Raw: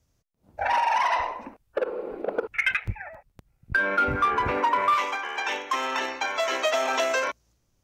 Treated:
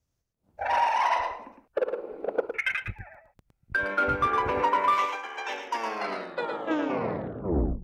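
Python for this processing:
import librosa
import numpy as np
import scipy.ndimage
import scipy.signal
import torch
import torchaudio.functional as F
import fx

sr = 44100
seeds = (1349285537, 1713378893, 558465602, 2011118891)

p1 = fx.tape_stop_end(x, sr, length_s=2.33)
p2 = fx.dynamic_eq(p1, sr, hz=500.0, q=0.9, threshold_db=-39.0, ratio=4.0, max_db=4)
p3 = p2 + fx.echo_single(p2, sr, ms=111, db=-5.0, dry=0)
p4 = fx.upward_expand(p3, sr, threshold_db=-30.0, expansion=1.5)
y = p4 * 10.0 ** (-2.5 / 20.0)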